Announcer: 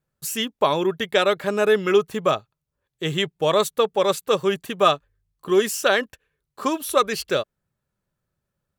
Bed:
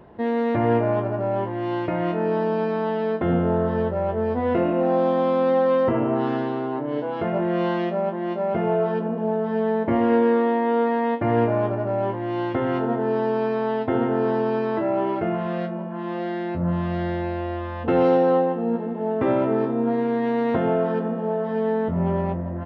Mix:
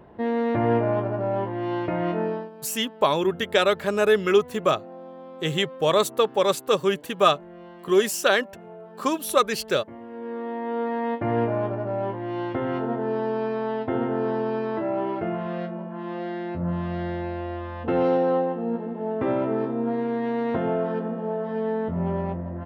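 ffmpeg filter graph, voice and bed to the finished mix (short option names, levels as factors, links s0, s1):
-filter_complex "[0:a]adelay=2400,volume=0.891[s0];[1:a]volume=6.31,afade=t=out:st=2.2:d=0.3:silence=0.105925,afade=t=in:st=10.13:d=0.99:silence=0.133352[s1];[s0][s1]amix=inputs=2:normalize=0"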